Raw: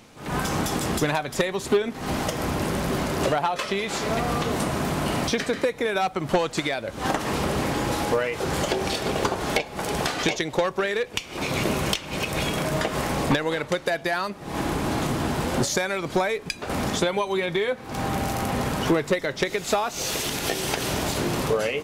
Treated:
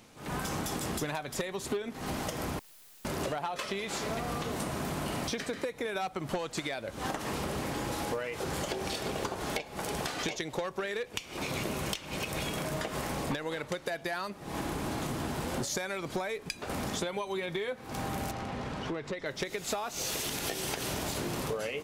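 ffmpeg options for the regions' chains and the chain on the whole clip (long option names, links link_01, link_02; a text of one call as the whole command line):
ffmpeg -i in.wav -filter_complex "[0:a]asettb=1/sr,asplit=3[link_01][link_02][link_03];[link_01]atrim=end=2.594[link_04];[link_02]atrim=start=2.59:end=3.05,asetpts=PTS-STARTPTS,afade=type=in:duration=0.004:curve=qsin,afade=type=out:start_time=0.456:duration=0.004:curve=qsin,lowpass=frequency=3300:width_type=q:width=0.5098,lowpass=frequency=3300:width_type=q:width=0.6013,lowpass=frequency=3300:width_type=q:width=0.9,lowpass=frequency=3300:width_type=q:width=2.563,afreqshift=-3900,aeval=exprs='(mod(33.5*val(0)+1,2)-1)/33.5':channel_layout=same,aeval=exprs='(tanh(398*val(0)+0.75)-tanh(0.75))/398':channel_layout=same[link_05];[link_03]atrim=start=3.046[link_06];[link_04][link_05]acrossfade=duration=0.004:curve1=hsin:curve2=qsin[link_07];[link_07][link_06]acrossfade=duration=0.004:curve1=qsin:curve2=hsin,asettb=1/sr,asplit=3[link_08][link_09][link_10];[link_08]atrim=end=18.314[link_11];[link_09]atrim=start=18.31:end=19.26,asetpts=PTS-STARTPTS,afade=type=in:duration=0.004:curve=qsin,afade=type=out:start_time=0.946:duration=0.004:curve=qsin,lowpass=4700,acompressor=threshold=-29dB:ratio=2:attack=3.2:release=140:knee=1:detection=peak[link_12];[link_10]atrim=start=19.256[link_13];[link_11][link_12]acrossfade=duration=0.004:curve1=hsin:curve2=qsin[link_14];[link_14][link_13]acrossfade=duration=0.004:curve1=qsin:curve2=hsin,acompressor=threshold=-25dB:ratio=3,highshelf=frequency=7300:gain=4.5,volume=-6.5dB" out.wav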